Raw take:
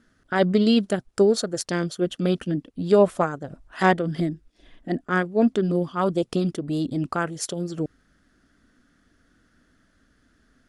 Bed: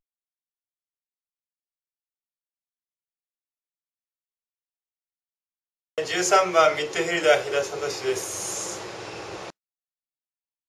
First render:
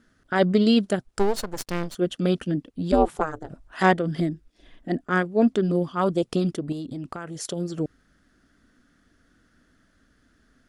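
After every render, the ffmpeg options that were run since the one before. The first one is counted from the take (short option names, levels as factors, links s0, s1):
-filter_complex "[0:a]asettb=1/sr,asplit=3[s0][s1][s2];[s0]atrim=end=1.194[s3];[s1]atrim=start=1.19:end=1.95,asetpts=PTS-STARTPTS,afade=t=in:d=0.004:c=qsin,afade=t=out:st=0.756:d=0.004:c=qsin,aeval=exprs='max(val(0),0)':c=same[s4];[s2]atrim=start=1.946[s5];[s3][s4]acrossfade=d=0.004:c1=hsin:c2=qsin[s6];[s6][s5]acrossfade=d=0.004:c1=qsin:c2=hsin,asplit=3[s7][s8][s9];[s7]afade=t=out:st=2.91:d=0.02[s10];[s8]aeval=exprs='val(0)*sin(2*PI*160*n/s)':c=same,afade=t=in:st=2.91:d=0.02,afade=t=out:st=3.48:d=0.02[s11];[s9]afade=t=in:st=3.48:d=0.02[s12];[s10][s11][s12]amix=inputs=3:normalize=0,asettb=1/sr,asplit=3[s13][s14][s15];[s13]atrim=end=6.724[s16];[s14]atrim=start=6.72:end=7.45,asetpts=PTS-STARTPTS,afade=t=in:d=0.004:c=qsin,afade=t=out:st=0.726:d=0.004:c=qsin,acompressor=threshold=0.0316:ratio=6:attack=3.2:release=140:knee=1:detection=peak[s17];[s15]atrim=start=7.446[s18];[s16][s17]acrossfade=d=0.004:c1=hsin:c2=qsin[s19];[s19][s18]acrossfade=d=0.004:c1=qsin:c2=hsin"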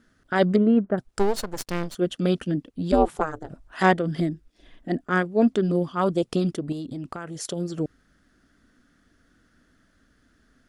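-filter_complex "[0:a]asettb=1/sr,asplit=3[s0][s1][s2];[s0]atrim=end=0.564[s3];[s1]atrim=start=0.56:end=0.98,asetpts=PTS-STARTPTS,afade=t=in:d=0.004:c=qsin,afade=t=out:st=0.416:d=0.004:c=qsin,lowpass=f=1600:w=0.5412,lowpass=f=1600:w=1.3066[s4];[s2]atrim=start=0.976[s5];[s3][s4]acrossfade=d=0.004:c1=hsin:c2=qsin[s6];[s6][s5]acrossfade=d=0.004:c1=qsin:c2=hsin"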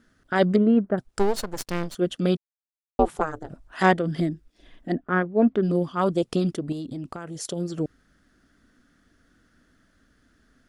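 -filter_complex "[0:a]asettb=1/sr,asplit=3[s0][s1][s2];[s0]atrim=end=4.934[s3];[s1]atrim=start=4.93:end=5.63,asetpts=PTS-STARTPTS,afade=t=in:d=0.004:c=qsin,afade=t=out:st=0.696:d=0.004:c=qsin,lowpass=2100[s4];[s2]atrim=start=5.626[s5];[s3][s4]acrossfade=d=0.004:c1=hsin:c2=qsin[s6];[s6][s5]acrossfade=d=0.004:c1=qsin:c2=hsin,asettb=1/sr,asplit=3[s7][s8][s9];[s7]atrim=end=7.004[s10];[s8]atrim=start=7:end=7.56,asetpts=PTS-STARTPTS,afade=t=in:d=0.004:c=qsin,afade=t=out:st=0.556:d=0.004:c=qsin,equalizer=f=1700:t=o:w=1.5:g=-3.5[s11];[s9]atrim=start=7.556[s12];[s10][s11]acrossfade=d=0.004:c1=hsin:c2=qsin[s13];[s13][s12]acrossfade=d=0.004:c1=qsin:c2=hsin,asplit=3[s14][s15][s16];[s14]atrim=end=2.37,asetpts=PTS-STARTPTS,afade=t=out:st=2.366:d=0.004:c=hsin[s17];[s15]atrim=start=2.37:end=2.99,asetpts=PTS-STARTPTS,volume=0[s18];[s16]atrim=start=2.99,asetpts=PTS-STARTPTS,afade=t=in:d=0.004:c=hsin[s19];[s17][s18][s19]concat=n=3:v=0:a=1"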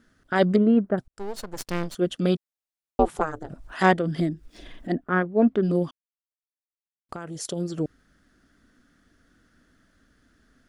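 -filter_complex "[0:a]asettb=1/sr,asplit=3[s0][s1][s2];[s0]atrim=end=3.004[s3];[s1]atrim=start=3:end=5.04,asetpts=PTS-STARTPTS,afade=t=in:d=0.004:c=qsin,afade=t=out:st=2.036:d=0.004:c=qsin,acompressor=mode=upward:threshold=0.0251:ratio=2.5:attack=3.2:release=140:knee=2.83:detection=peak[s4];[s2]atrim=start=5.036[s5];[s3][s4]acrossfade=d=0.004:c1=hsin:c2=qsin[s6];[s6][s5]acrossfade=d=0.004:c1=qsin:c2=hsin,asplit=4[s7][s8][s9][s10];[s7]atrim=end=1.08,asetpts=PTS-STARTPTS,afade=t=out:st=1.076:d=0.004:c=hsin[s11];[s8]atrim=start=1.08:end=5.91,asetpts=PTS-STARTPTS,afade=t=in:d=0.66,afade=t=out:st=4.826:d=0.004:c=hsin[s12];[s9]atrim=start=5.91:end=7.09,asetpts=PTS-STARTPTS,volume=0[s13];[s10]atrim=start=7.09,asetpts=PTS-STARTPTS,afade=t=in:d=0.004:c=hsin[s14];[s11][s12][s13][s14]concat=n=4:v=0:a=1"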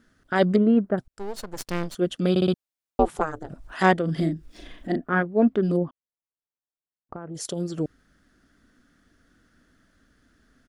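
-filter_complex "[0:a]asplit=3[s0][s1][s2];[s0]afade=t=out:st=4.07:d=0.02[s3];[s1]asplit=2[s4][s5];[s5]adelay=37,volume=0.473[s6];[s4][s6]amix=inputs=2:normalize=0,afade=t=in:st=4.07:d=0.02,afade=t=out:st=5.2:d=0.02[s7];[s2]afade=t=in:st=5.2:d=0.02[s8];[s3][s7][s8]amix=inputs=3:normalize=0,asplit=3[s9][s10][s11];[s9]afade=t=out:st=5.76:d=0.02[s12];[s10]lowpass=1100,afade=t=in:st=5.76:d=0.02,afade=t=out:st=7.34:d=0.02[s13];[s11]afade=t=in:st=7.34:d=0.02[s14];[s12][s13][s14]amix=inputs=3:normalize=0,asplit=5[s15][s16][s17][s18][s19];[s15]atrim=end=2.362[s20];[s16]atrim=start=2.298:end=2.362[s21];[s17]atrim=start=2.298:end=2.362[s22];[s18]atrim=start=2.298:end=2.362[s23];[s19]atrim=start=2.538[s24];[s20][s21]acrossfade=d=0.004:c1=hsin:c2=hsin[s25];[s25][s22]acrossfade=d=0.004:c1=hsin:c2=hsin[s26];[s26][s23]acrossfade=d=0.004:c1=hsin:c2=hsin[s27];[s27][s24]acrossfade=d=0.004:c1=hsin:c2=hsin"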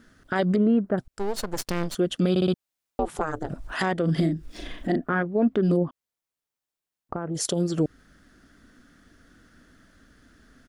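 -filter_complex "[0:a]asplit=2[s0][s1];[s1]acompressor=threshold=0.0355:ratio=6,volume=1.06[s2];[s0][s2]amix=inputs=2:normalize=0,alimiter=limit=0.2:level=0:latency=1:release=84"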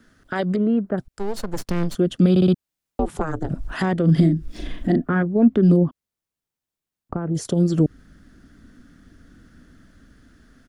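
-filter_complex "[0:a]acrossover=split=300|500|1800[s0][s1][s2][s3];[s0]dynaudnorm=f=590:g=5:m=2.82[s4];[s3]alimiter=level_in=1.06:limit=0.0631:level=0:latency=1:release=135,volume=0.944[s5];[s4][s1][s2][s5]amix=inputs=4:normalize=0"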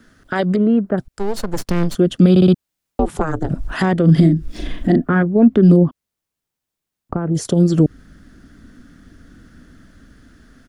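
-af "volume=1.78,alimiter=limit=0.708:level=0:latency=1"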